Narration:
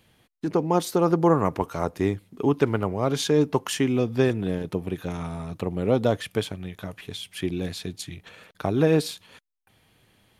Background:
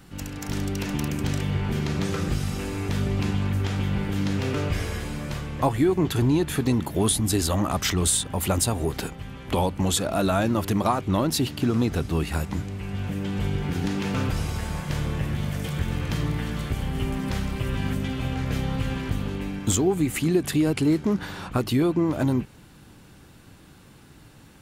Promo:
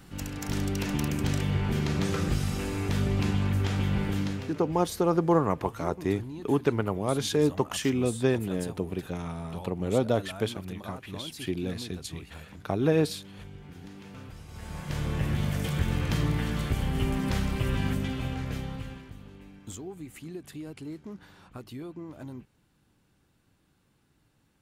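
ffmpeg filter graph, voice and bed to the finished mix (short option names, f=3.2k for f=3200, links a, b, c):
-filter_complex "[0:a]adelay=4050,volume=-3.5dB[a];[1:a]volume=17dB,afade=t=out:st=4.1:d=0.44:silence=0.133352,afade=t=in:st=14.47:d=0.84:silence=0.11885,afade=t=out:st=17.7:d=1.39:silence=0.125893[b];[a][b]amix=inputs=2:normalize=0"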